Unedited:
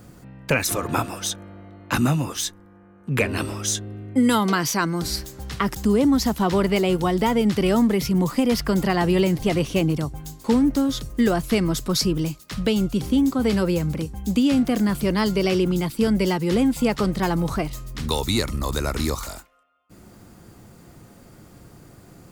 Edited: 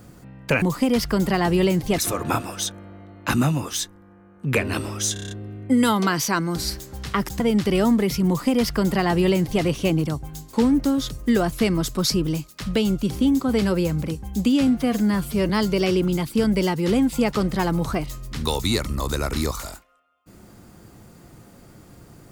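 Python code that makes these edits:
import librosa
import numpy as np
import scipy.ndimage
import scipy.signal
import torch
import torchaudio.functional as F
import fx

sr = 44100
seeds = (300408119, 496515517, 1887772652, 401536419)

y = fx.edit(x, sr, fx.stutter(start_s=3.77, slice_s=0.03, count=7),
    fx.cut(start_s=5.86, length_s=1.45),
    fx.duplicate(start_s=8.18, length_s=1.36, to_s=0.62),
    fx.stretch_span(start_s=14.58, length_s=0.55, factor=1.5), tone=tone)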